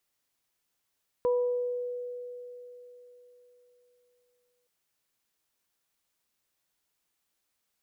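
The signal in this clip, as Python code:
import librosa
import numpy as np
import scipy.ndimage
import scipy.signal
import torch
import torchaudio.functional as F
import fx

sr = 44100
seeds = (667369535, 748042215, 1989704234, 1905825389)

y = fx.additive(sr, length_s=3.42, hz=491.0, level_db=-22, upper_db=(-11,), decay_s=3.82, upper_decays_s=(0.79,))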